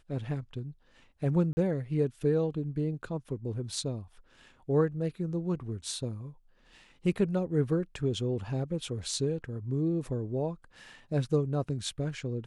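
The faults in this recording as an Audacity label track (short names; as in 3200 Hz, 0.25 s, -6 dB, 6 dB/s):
1.530000	1.570000	gap 40 ms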